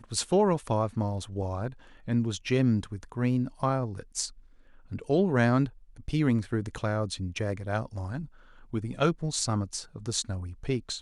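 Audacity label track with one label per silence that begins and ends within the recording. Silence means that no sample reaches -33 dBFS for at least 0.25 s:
1.680000	2.080000	silence
4.270000	4.920000	silence
5.680000	6.080000	silence
8.240000	8.740000	silence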